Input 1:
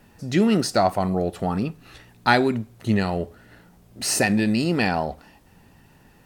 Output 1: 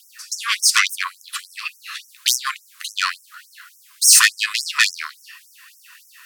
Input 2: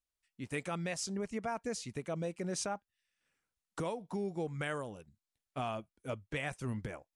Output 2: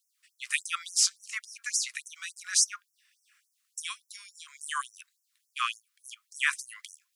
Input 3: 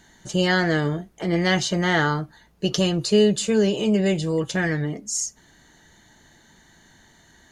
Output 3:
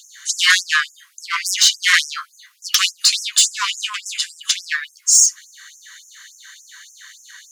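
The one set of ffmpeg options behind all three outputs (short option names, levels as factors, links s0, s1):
-af "aeval=exprs='0.794*sin(PI/2*5.62*val(0)/0.794)':c=same,afftfilt=real='re*gte(b*sr/1024,970*pow(5400/970,0.5+0.5*sin(2*PI*3.5*pts/sr)))':imag='im*gte(b*sr/1024,970*pow(5400/970,0.5+0.5*sin(2*PI*3.5*pts/sr)))':win_size=1024:overlap=0.75,volume=0.75"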